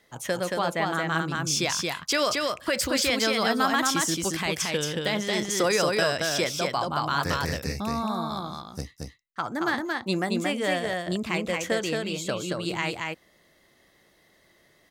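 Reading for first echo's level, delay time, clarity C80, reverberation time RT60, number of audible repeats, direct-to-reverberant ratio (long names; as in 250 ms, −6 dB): −3.0 dB, 226 ms, no reverb audible, no reverb audible, 1, no reverb audible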